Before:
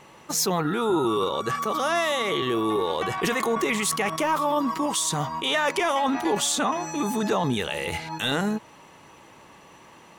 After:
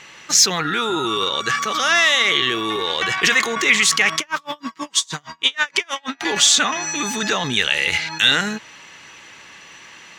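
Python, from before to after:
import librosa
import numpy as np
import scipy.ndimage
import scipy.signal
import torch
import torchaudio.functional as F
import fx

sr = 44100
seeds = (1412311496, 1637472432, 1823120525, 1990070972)

y = fx.band_shelf(x, sr, hz=3200.0, db=14.5, octaves=2.7)
y = fx.tremolo_db(y, sr, hz=6.3, depth_db=36, at=(4.19, 6.21))
y = y * librosa.db_to_amplitude(-1.0)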